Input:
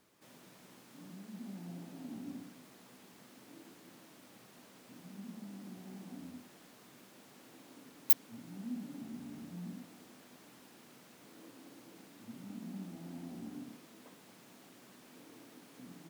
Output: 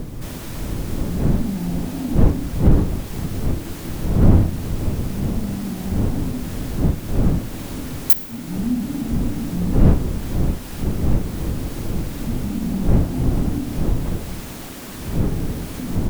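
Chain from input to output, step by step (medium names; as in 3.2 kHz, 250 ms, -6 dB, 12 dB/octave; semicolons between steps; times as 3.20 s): wind noise 220 Hz -42 dBFS; in parallel at +1 dB: compression, threshold -49 dBFS, peak gain reduction 28 dB; on the sum: treble shelf 10 kHz +5.5 dB; on a send at -17 dB: reverberation RT60 1.9 s, pre-delay 4 ms; on the sum: saturation -14 dBFS, distortion -8 dB; bass shelf 99 Hz +8.5 dB; loudness maximiser +16.5 dB; trim -1 dB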